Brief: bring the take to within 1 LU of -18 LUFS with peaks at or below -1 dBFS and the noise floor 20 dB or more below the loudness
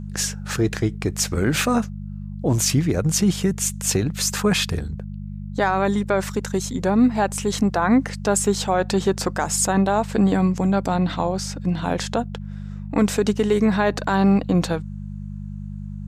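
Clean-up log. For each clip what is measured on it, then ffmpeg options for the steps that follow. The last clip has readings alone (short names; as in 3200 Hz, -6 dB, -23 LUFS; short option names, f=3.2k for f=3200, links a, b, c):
hum 50 Hz; harmonics up to 200 Hz; hum level -30 dBFS; loudness -21.5 LUFS; peak -7.5 dBFS; loudness target -18.0 LUFS
-> -af "bandreject=f=50:t=h:w=4,bandreject=f=100:t=h:w=4,bandreject=f=150:t=h:w=4,bandreject=f=200:t=h:w=4"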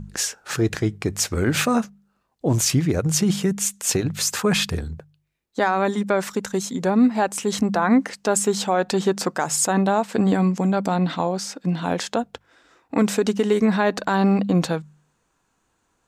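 hum none; loudness -21.5 LUFS; peak -8.0 dBFS; loudness target -18.0 LUFS
-> -af "volume=3.5dB"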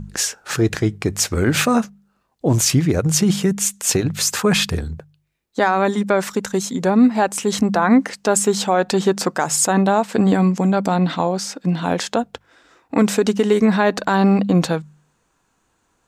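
loudness -18.0 LUFS; peak -4.5 dBFS; noise floor -66 dBFS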